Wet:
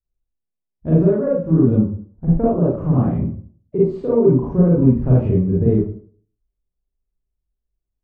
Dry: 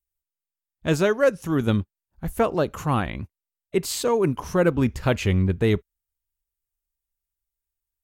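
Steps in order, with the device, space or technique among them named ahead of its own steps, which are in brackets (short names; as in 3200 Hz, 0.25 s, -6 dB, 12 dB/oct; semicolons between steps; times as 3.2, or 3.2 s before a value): television next door (compressor, threshold -21 dBFS, peak gain reduction 7.5 dB; LPF 480 Hz 12 dB/oct; reverb RT60 0.50 s, pre-delay 35 ms, DRR -7 dB); gain +2.5 dB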